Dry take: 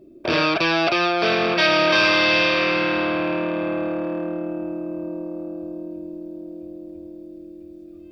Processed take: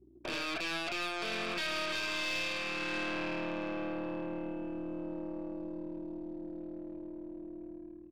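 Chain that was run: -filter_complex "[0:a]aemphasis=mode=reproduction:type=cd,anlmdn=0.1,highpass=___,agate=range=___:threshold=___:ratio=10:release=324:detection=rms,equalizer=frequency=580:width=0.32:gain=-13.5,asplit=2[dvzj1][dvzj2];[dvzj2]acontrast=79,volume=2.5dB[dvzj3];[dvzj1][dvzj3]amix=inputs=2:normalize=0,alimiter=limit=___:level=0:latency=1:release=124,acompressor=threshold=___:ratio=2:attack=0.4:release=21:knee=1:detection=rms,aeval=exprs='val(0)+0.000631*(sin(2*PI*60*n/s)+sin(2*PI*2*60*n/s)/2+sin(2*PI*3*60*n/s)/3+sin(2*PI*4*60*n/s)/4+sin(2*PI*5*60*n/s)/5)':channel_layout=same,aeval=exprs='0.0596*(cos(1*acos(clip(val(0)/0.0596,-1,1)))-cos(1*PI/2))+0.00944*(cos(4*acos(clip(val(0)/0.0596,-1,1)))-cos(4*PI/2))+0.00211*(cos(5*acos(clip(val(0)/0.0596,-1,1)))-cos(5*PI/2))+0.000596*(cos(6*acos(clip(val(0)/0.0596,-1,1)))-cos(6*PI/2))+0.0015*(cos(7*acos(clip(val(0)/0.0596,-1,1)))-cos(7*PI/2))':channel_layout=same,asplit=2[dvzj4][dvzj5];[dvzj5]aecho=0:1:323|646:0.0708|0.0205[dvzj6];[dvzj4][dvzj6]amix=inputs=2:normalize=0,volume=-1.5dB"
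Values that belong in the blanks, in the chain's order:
210, -10dB, -39dB, -10.5dB, -43dB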